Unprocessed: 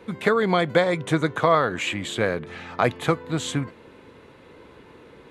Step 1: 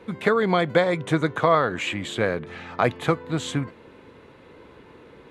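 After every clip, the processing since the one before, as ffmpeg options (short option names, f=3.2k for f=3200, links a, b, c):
-af "highshelf=f=5.2k:g=-5"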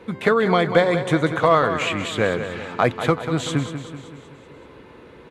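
-filter_complex "[0:a]asplit=2[a][b];[b]volume=12.5dB,asoftclip=hard,volume=-12.5dB,volume=-8.5dB[c];[a][c]amix=inputs=2:normalize=0,aecho=1:1:190|380|570|760|950|1140:0.316|0.171|0.0922|0.0498|0.0269|0.0145"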